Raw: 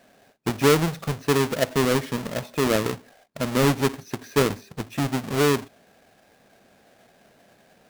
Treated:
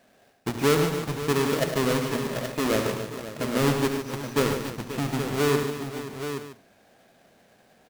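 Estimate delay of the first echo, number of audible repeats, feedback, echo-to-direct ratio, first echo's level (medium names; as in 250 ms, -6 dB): 71 ms, 10, no regular repeats, -2.0 dB, -11.0 dB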